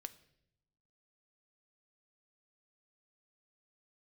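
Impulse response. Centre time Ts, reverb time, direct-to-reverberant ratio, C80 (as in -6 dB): 4 ms, not exponential, 11.0 dB, 20.0 dB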